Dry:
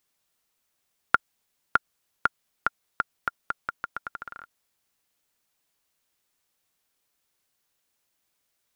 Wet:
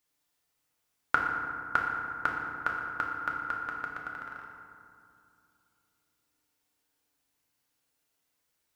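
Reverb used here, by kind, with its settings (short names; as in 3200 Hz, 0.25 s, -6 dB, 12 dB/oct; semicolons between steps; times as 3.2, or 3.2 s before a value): FDN reverb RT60 2.5 s, low-frequency decay 1.35×, high-frequency decay 0.45×, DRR -2 dB; gain -5.5 dB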